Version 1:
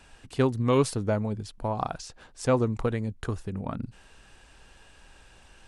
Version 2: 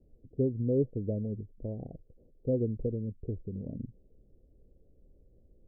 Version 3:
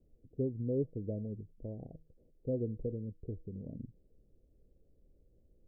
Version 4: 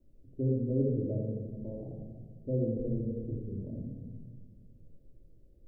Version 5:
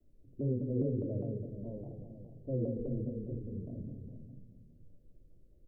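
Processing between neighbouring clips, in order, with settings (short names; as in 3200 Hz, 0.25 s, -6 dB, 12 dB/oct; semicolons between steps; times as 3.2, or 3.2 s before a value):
steep low-pass 540 Hz 48 dB/oct; gain -4.5 dB
resonator 160 Hz, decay 0.4 s, harmonics all, mix 40%; gain -1.5 dB
shoebox room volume 1400 m³, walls mixed, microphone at 2.6 m; gain -1.5 dB
echo 0.462 s -13 dB; shaped vibrato saw down 4.9 Hz, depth 160 cents; gain -3.5 dB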